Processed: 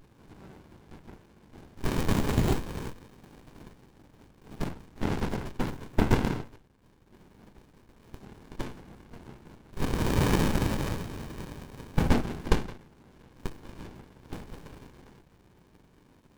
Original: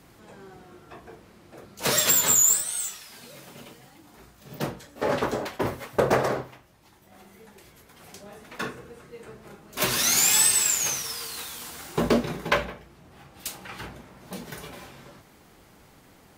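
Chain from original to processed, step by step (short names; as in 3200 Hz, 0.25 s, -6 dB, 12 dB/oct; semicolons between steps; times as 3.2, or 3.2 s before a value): spectral limiter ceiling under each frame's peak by 13 dB; 9.93–12.13 comb 1.3 ms, depth 93%; running maximum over 65 samples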